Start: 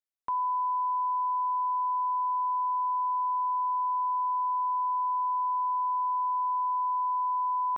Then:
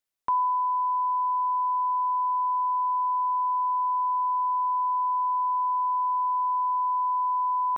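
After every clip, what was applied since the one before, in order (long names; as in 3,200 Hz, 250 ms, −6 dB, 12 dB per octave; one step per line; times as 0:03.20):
speech leveller 0.5 s
level +3 dB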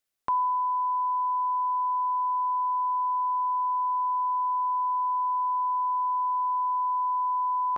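notch filter 960 Hz, Q 9.7
level +3 dB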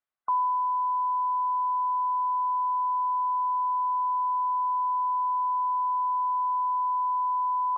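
high-frequency loss of the air 230 metres
gate on every frequency bin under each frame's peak −25 dB strong
parametric band 1,100 Hz +10.5 dB 1.7 octaves
level −9 dB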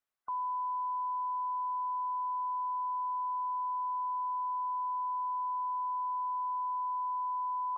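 brickwall limiter −31 dBFS, peak gain reduction 11 dB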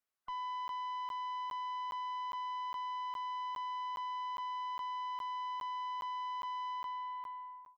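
fade-out on the ending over 1.08 s
tube saturation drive 36 dB, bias 0.3
regular buffer underruns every 0.41 s, samples 512, zero, from 0:00.68
level −1 dB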